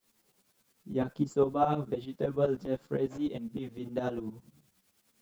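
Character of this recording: a quantiser's noise floor 12-bit, dither triangular; tremolo saw up 9.8 Hz, depth 85%; a shimmering, thickened sound

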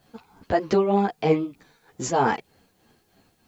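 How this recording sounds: tremolo triangle 3.2 Hz, depth 75%; a quantiser's noise floor 12-bit, dither triangular; a shimmering, thickened sound

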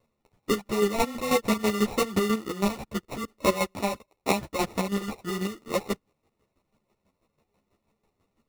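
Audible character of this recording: aliases and images of a low sample rate 1.6 kHz, jitter 0%; chopped level 6.1 Hz, depth 65%, duty 30%; a shimmering, thickened sound

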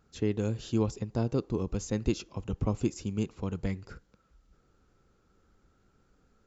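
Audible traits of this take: noise floor -69 dBFS; spectral tilt -8.5 dB/octave

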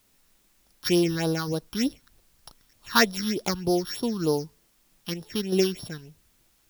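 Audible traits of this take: a buzz of ramps at a fixed pitch in blocks of 8 samples; phasing stages 6, 3.3 Hz, lowest notch 570–2200 Hz; a quantiser's noise floor 12-bit, dither triangular

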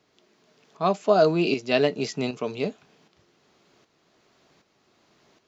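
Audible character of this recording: tremolo saw up 1.3 Hz, depth 60%

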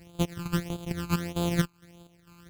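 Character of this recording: a buzz of ramps at a fixed pitch in blocks of 256 samples; chopped level 2.2 Hz, depth 65%, duty 55%; a quantiser's noise floor 12-bit, dither none; phasing stages 12, 1.6 Hz, lowest notch 580–1900 Hz

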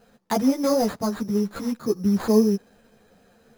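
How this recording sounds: aliases and images of a low sample rate 5.6 kHz, jitter 0%; a shimmering, thickened sound

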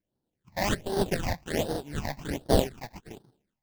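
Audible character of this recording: aliases and images of a low sample rate 1.2 kHz, jitter 20%; phasing stages 8, 1.3 Hz, lowest notch 390–2400 Hz; random flutter of the level

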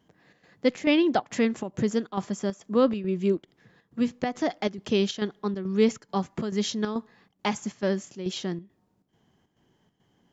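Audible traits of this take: chopped level 2.3 Hz, depth 60%, duty 75%; AAC

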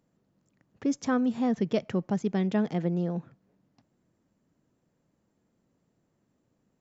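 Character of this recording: noise floor -75 dBFS; spectral tilt -6.5 dB/octave

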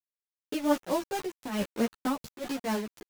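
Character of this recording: a quantiser's noise floor 6-bit, dither none; tremolo triangle 4.5 Hz, depth 75%; a shimmering, thickened sound

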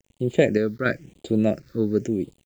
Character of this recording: random-step tremolo; a quantiser's noise floor 10-bit, dither none; phasing stages 6, 0.98 Hz, lowest notch 720–1600 Hz

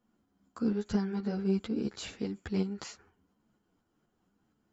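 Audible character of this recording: tremolo saw up 4.2 Hz, depth 40%; a shimmering, thickened sound

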